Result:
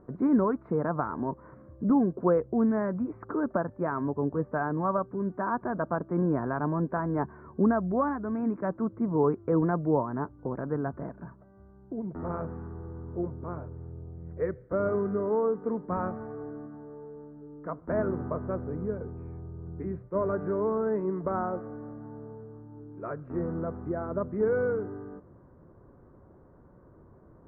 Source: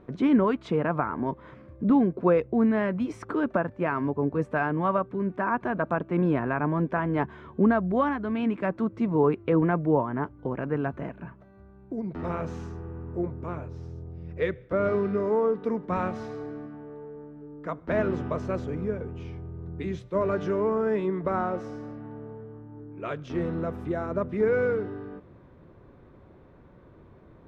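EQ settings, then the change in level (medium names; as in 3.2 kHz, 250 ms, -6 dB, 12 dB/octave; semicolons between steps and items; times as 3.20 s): inverse Chebyshev low-pass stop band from 3 kHz, stop band 40 dB; -2.5 dB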